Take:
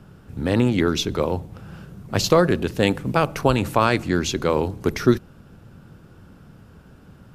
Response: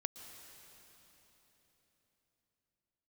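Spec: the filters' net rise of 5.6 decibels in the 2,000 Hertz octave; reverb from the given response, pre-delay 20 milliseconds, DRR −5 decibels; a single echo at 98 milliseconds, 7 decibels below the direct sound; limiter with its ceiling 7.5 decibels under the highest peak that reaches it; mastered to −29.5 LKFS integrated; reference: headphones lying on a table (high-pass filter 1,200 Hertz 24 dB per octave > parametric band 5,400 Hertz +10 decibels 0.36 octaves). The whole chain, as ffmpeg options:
-filter_complex "[0:a]equalizer=frequency=2000:width_type=o:gain=7.5,alimiter=limit=-8dB:level=0:latency=1,aecho=1:1:98:0.447,asplit=2[link_01][link_02];[1:a]atrim=start_sample=2205,adelay=20[link_03];[link_02][link_03]afir=irnorm=-1:irlink=0,volume=6.5dB[link_04];[link_01][link_04]amix=inputs=2:normalize=0,highpass=frequency=1200:width=0.5412,highpass=frequency=1200:width=1.3066,equalizer=frequency=5400:width_type=o:width=0.36:gain=10,volume=-10dB"

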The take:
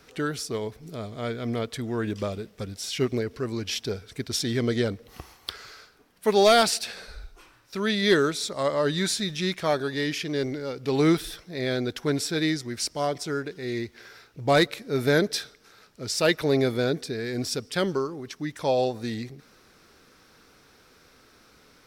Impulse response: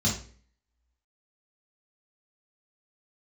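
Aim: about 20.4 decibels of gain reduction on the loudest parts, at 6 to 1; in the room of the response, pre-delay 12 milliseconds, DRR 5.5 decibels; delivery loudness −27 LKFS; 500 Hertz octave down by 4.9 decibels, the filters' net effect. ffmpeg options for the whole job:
-filter_complex "[0:a]equalizer=frequency=500:width_type=o:gain=-6.5,acompressor=threshold=-41dB:ratio=6,asplit=2[link_01][link_02];[1:a]atrim=start_sample=2205,adelay=12[link_03];[link_02][link_03]afir=irnorm=-1:irlink=0,volume=-14.5dB[link_04];[link_01][link_04]amix=inputs=2:normalize=0,volume=12dB"

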